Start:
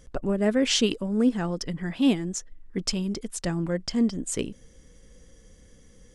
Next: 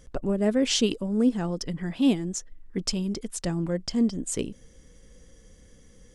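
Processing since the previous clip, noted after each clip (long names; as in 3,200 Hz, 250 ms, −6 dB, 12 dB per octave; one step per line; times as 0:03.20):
dynamic equaliser 1,700 Hz, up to −5 dB, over −43 dBFS, Q 0.88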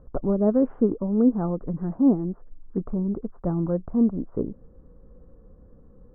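Butterworth low-pass 1,300 Hz 48 dB per octave
level +3 dB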